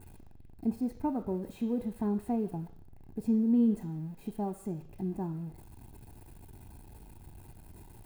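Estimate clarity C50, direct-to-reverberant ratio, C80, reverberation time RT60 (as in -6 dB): 15.0 dB, 10.5 dB, 17.5 dB, 0.65 s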